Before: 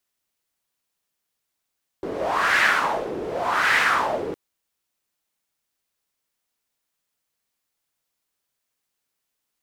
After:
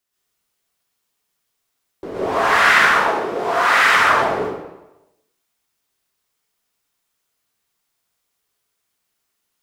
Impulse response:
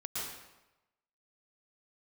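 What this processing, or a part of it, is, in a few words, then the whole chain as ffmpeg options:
bathroom: -filter_complex "[1:a]atrim=start_sample=2205[a];[0:a][a]afir=irnorm=-1:irlink=0,asettb=1/sr,asplit=3[b][c][d];[b]atrim=end=3.084[e];[c]atrim=start=3.08:end=3.96,asetpts=PTS-STARTPTS,afade=t=in:d=0.004:c=qsin,afade=t=out:st=0.876:d=0.004:c=qsin,highpass=f=270:p=1[f];[d]atrim=start=3.956[g];[e][f]acrossfade=d=0.004:c1=hsin:c2=qsin[h];[h][g]acrossfade=d=0.004:c1=qsin:c2=hsin,volume=4dB"

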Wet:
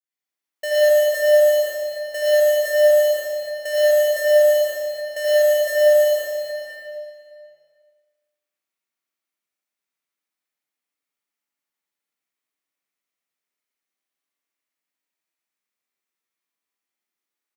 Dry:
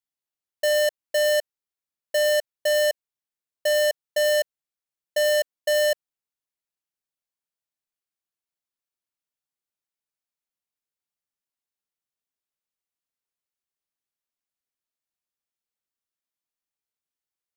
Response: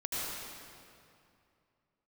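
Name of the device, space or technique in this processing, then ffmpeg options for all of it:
PA in a hall: -filter_complex "[0:a]highpass=f=170:w=0.5412,highpass=f=170:w=1.3066,equalizer=f=2.1k:t=o:w=0.6:g=6.5,aecho=1:1:87:0.562,aecho=1:1:114|228|342|456|570|684:0.473|0.237|0.118|0.0591|0.0296|0.0148[a];[1:a]atrim=start_sample=2205[b];[a][b]afir=irnorm=-1:irlink=0,adynamicequalizer=threshold=0.0224:dfrequency=2700:dqfactor=0.71:tfrequency=2700:tqfactor=0.71:attack=5:release=100:ratio=0.375:range=3.5:mode=cutabove:tftype=bell,volume=-2.5dB"

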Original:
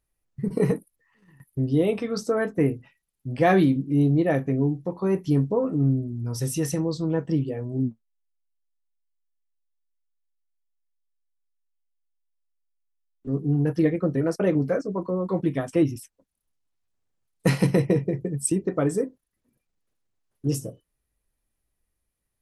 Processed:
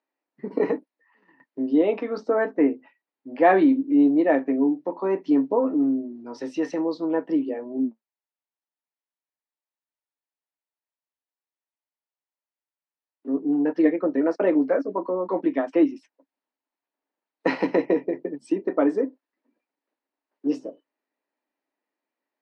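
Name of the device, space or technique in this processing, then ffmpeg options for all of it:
kitchen radio: -filter_complex "[0:a]highpass=f=240:w=0.5412,highpass=f=240:w=1.3066,highpass=230,equalizer=f=280:t=q:w=4:g=8,equalizer=f=620:t=q:w=4:g=5,equalizer=f=910:t=q:w=4:g=8,equalizer=f=1.8k:t=q:w=4:g=3,equalizer=f=3.4k:t=q:w=4:g=-6,lowpass=f=4.1k:w=0.5412,lowpass=f=4.1k:w=1.3066,asettb=1/sr,asplit=3[a][b][c];[a]atrim=end=1.994[d];[b]atrim=start=1.99:end=3.69,asetpts=PTS-STARTPTS,afade=t=in:d=0.004:c=qsin,afade=t=out:st=1.696:d=0.004:c=qsin,highshelf=f=4.8k:g=-8[e];[c]atrim=start=3.686[f];[d][e]acrossfade=d=0.004:c1=hsin:c2=qsin[g];[g][f]acrossfade=d=0.004:c1=qsin:c2=hsin"

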